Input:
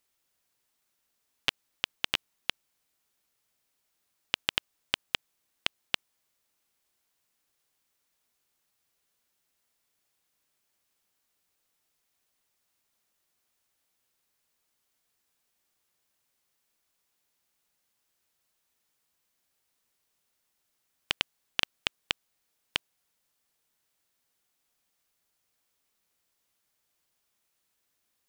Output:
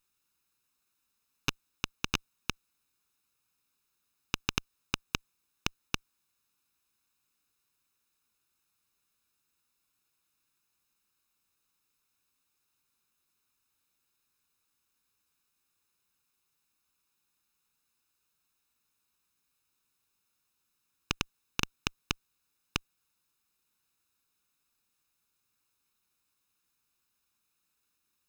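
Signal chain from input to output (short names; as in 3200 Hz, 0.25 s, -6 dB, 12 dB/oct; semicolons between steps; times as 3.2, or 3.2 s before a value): minimum comb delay 0.76 ms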